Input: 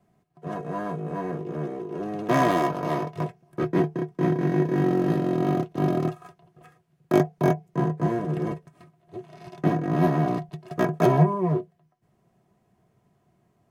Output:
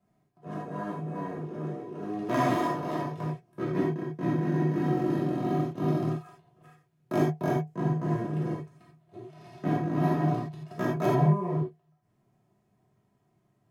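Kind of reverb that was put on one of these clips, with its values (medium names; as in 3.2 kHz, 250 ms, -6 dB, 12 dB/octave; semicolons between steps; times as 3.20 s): gated-style reverb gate 110 ms flat, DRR -3.5 dB; trim -10 dB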